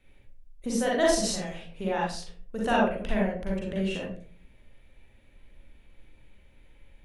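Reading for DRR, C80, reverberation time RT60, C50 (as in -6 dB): -4.5 dB, 7.5 dB, 0.45 s, 0.0 dB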